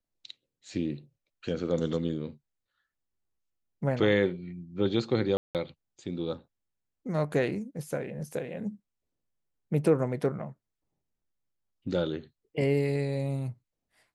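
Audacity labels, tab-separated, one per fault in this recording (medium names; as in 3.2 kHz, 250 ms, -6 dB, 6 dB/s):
5.370000	5.550000	dropout 178 ms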